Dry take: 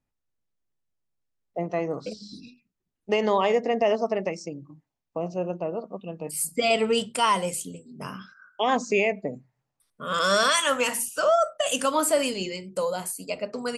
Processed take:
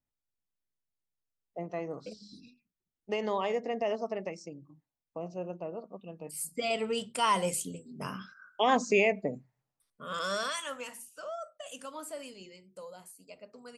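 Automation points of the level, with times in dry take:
0:07.00 −9 dB
0:07.47 −2 dB
0:09.30 −2 dB
0:10.46 −12.5 dB
0:11.02 −19 dB

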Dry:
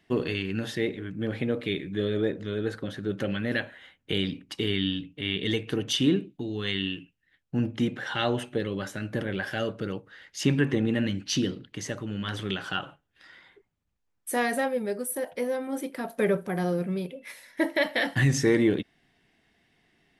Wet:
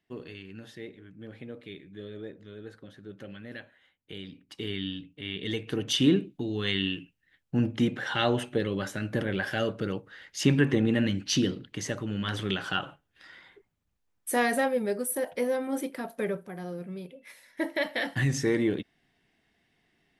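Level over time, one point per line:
0:04.25 −14 dB
0:04.66 −6.5 dB
0:05.33 −6.5 dB
0:06.05 +1 dB
0:15.81 +1 dB
0:16.56 −11 dB
0:17.76 −4 dB

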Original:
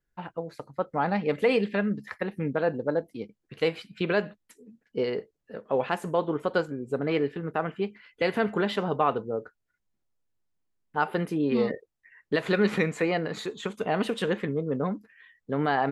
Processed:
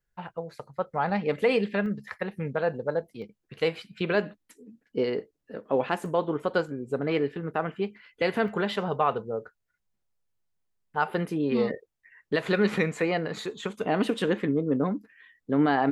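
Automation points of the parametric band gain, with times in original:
parametric band 290 Hz 0.44 octaves
−11 dB
from 0:01.10 −2.5 dB
from 0:01.86 −10 dB
from 0:03.22 −3.5 dB
from 0:04.15 +6 dB
from 0:06.06 −0.5 dB
from 0:08.48 −8.5 dB
from 0:11.10 −1.5 dB
from 0:13.84 +8 dB

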